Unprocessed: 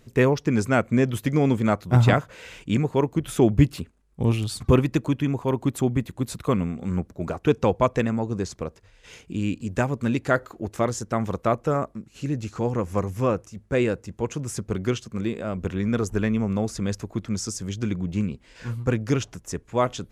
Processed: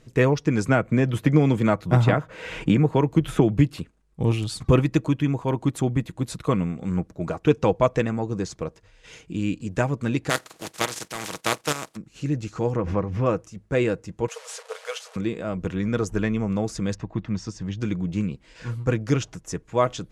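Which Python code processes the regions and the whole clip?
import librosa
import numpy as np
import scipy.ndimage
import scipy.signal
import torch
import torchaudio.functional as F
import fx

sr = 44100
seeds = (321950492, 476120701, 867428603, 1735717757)

y = fx.chain(x, sr, fx.peak_eq(hz=6700.0, db=-6.0, octaves=1.9),
    fx.band_squash(depth_pct=100), at=(0.68, 3.79))
y = fx.spec_flatten(y, sr, power=0.32, at=(10.29, 11.95), fade=0.02)
y = fx.highpass(y, sr, hz=110.0, slope=12, at=(10.29, 11.95), fade=0.02)
y = fx.level_steps(y, sr, step_db=11, at=(10.29, 11.95), fade=0.02)
y = fx.chain(y, sr, fx.air_absorb(metres=250.0),
    fx.pre_swell(db_per_s=55.0), at=(12.76, 13.26))
y = fx.chain(y, sr, fx.delta_mod(bps=64000, step_db=-36.5),
    fx.brickwall_highpass(low_hz=430.0), at=(14.28, 15.16))
y = fx.chain(y, sr, fx.lowpass(hz=3400.0, slope=12),
    fx.comb(ms=1.1, depth=0.32), at=(16.94, 17.8))
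y = scipy.signal.sosfilt(scipy.signal.butter(2, 10000.0, 'lowpass', fs=sr, output='sos'), y)
y = y + 0.32 * np.pad(y, (int(6.3 * sr / 1000.0), 0))[:len(y)]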